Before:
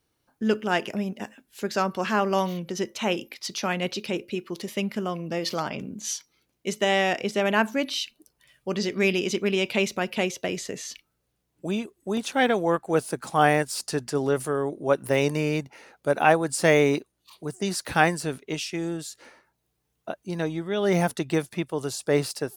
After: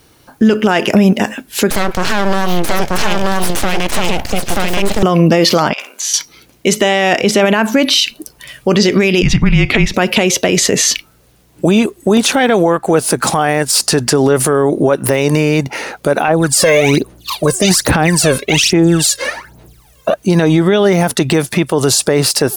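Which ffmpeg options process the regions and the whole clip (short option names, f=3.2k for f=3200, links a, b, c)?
-filter_complex "[0:a]asettb=1/sr,asplit=3[a][b][c];[a]atrim=end=1.704[d];[b]atrim=start=1.7:end=5.03,asetpts=PTS-STARTPTS,afade=t=in:d=0.004:c=qsin,afade=t=out:st=3.326:d=0.004:c=qsin,aeval=exprs='(tanh(7.94*val(0)+0.75)-tanh(0.75))/7.94':c=same,aeval=exprs='abs(val(0))':c=same,aecho=1:1:933:0.596,atrim=end_sample=146853[e];[c]atrim=start=5.026[f];[d][e]acrossfade=d=0.004:c1=hsin:c2=qsin[g];[g][f]acrossfade=d=0.004:c1=qsin:c2=hsin,asettb=1/sr,asplit=3[h][i][j];[h]atrim=end=5.734[k];[i]atrim=start=5.73:end=6.14,asetpts=PTS-STARTPTS,afade=t=in:d=0.004:c=qsin,afade=t=out:st=0.406:d=0.004:c=qsin,highpass=f=870:w=0.5412,highpass=f=870:w=1.3066,acompressor=threshold=-43dB:ratio=6:attack=3.2:release=140:knee=1:detection=peak,asplit=2[l][m];[m]adelay=49,volume=-5dB[n];[l][n]amix=inputs=2:normalize=0,atrim=end_sample=18081[o];[j]atrim=start=6.136[p];[k][o]acrossfade=d=0.004:c1=hsin:c2=qsin[q];[q][p]acrossfade=d=0.004:c1=qsin:c2=hsin,asettb=1/sr,asplit=3[r][s][t];[r]atrim=end=9.224[u];[s]atrim=start=9.22:end=9.94,asetpts=PTS-STARTPTS,afade=t=in:d=0.004:c=qsin,afade=t=out:st=0.716:d=0.004:c=qsin,lowpass=f=2k:p=1,afreqshift=-220[v];[t]atrim=start=9.936[w];[u][v]acrossfade=d=0.004:c1=hsin:c2=qsin[x];[x][w]acrossfade=d=0.004:c1=qsin:c2=hsin,asettb=1/sr,asplit=3[y][z][aa];[y]atrim=end=16.284[ab];[z]atrim=start=16.28:end=20.14,asetpts=PTS-STARTPTS,afade=t=in:d=0.004:c=qsin,afade=t=out:st=3.856:d=0.004:c=qsin,acompressor=threshold=-22dB:ratio=2:attack=3.2:release=140:knee=1:detection=peak,aphaser=in_gain=1:out_gain=1:delay=1.9:decay=0.77:speed=1.2:type=sinusoidal[ac];[aa]atrim=start=20.136[ad];[ab][ac]acrossfade=d=0.004:c1=hsin:c2=qsin[ae];[ae][ad]acrossfade=d=0.004:c1=qsin:c2=hsin,acompressor=threshold=-27dB:ratio=6,alimiter=level_in=27dB:limit=-1dB:release=50:level=0:latency=1,volume=-1dB"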